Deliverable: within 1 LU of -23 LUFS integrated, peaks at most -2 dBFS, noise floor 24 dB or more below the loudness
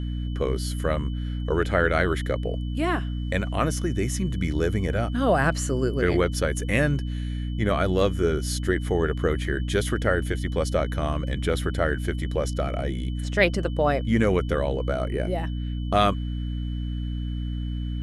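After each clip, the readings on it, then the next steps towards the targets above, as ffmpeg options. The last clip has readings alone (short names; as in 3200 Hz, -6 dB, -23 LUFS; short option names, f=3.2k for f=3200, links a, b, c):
hum 60 Hz; harmonics up to 300 Hz; hum level -26 dBFS; steady tone 3000 Hz; tone level -48 dBFS; loudness -25.5 LUFS; peak -4.5 dBFS; loudness target -23.0 LUFS
-> -af "bandreject=f=60:t=h:w=4,bandreject=f=120:t=h:w=4,bandreject=f=180:t=h:w=4,bandreject=f=240:t=h:w=4,bandreject=f=300:t=h:w=4"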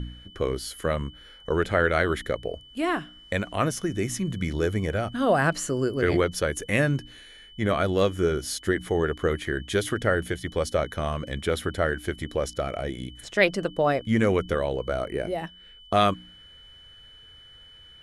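hum none; steady tone 3000 Hz; tone level -48 dBFS
-> -af "bandreject=f=3k:w=30"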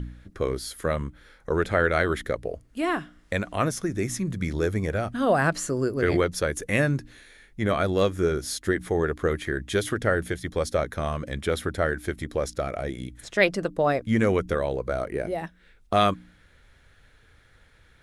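steady tone none; loudness -26.5 LUFS; peak -3.5 dBFS; loudness target -23.0 LUFS
-> -af "volume=3.5dB,alimiter=limit=-2dB:level=0:latency=1"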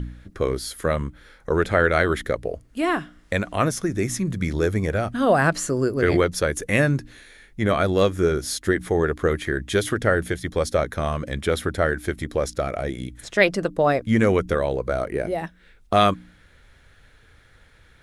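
loudness -23.0 LUFS; peak -2.0 dBFS; noise floor -54 dBFS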